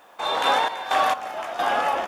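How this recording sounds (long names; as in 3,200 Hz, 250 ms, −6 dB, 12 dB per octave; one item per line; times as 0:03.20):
sample-and-hold tremolo 4.4 Hz, depth 75%
a quantiser's noise floor 12 bits, dither triangular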